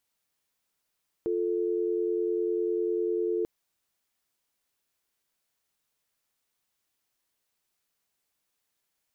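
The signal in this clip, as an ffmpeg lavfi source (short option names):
-f lavfi -i "aevalsrc='0.0398*(sin(2*PI*350*t)+sin(2*PI*440*t))':d=2.19:s=44100"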